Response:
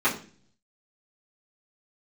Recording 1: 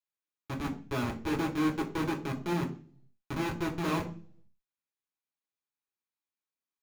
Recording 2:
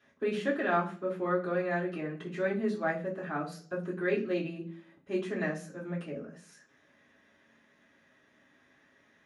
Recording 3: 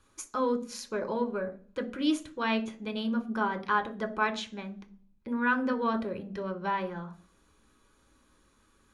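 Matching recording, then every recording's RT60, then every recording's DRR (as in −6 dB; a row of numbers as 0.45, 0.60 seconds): 2; 0.40, 0.40, 0.40 seconds; −1.0, −10.5, 4.5 decibels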